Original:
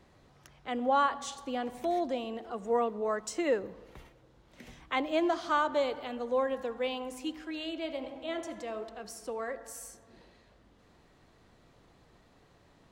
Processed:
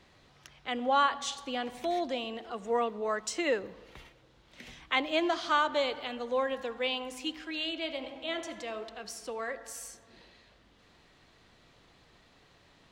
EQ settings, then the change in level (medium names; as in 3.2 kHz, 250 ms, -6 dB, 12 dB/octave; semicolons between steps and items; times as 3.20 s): peaking EQ 3.3 kHz +9.5 dB 2.3 oct; -2.0 dB